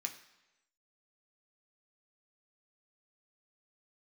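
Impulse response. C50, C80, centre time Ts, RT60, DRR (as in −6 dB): 11.0 dB, 13.5 dB, 13 ms, 1.0 s, 3.0 dB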